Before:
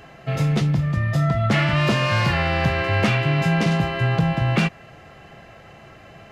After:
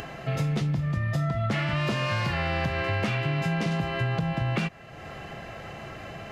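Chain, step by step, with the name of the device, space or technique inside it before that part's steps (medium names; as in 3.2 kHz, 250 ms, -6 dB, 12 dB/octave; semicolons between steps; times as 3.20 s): upward and downward compression (upward compressor, threshold -28 dBFS; compression, threshold -21 dBFS, peak gain reduction 7.5 dB); trim -2.5 dB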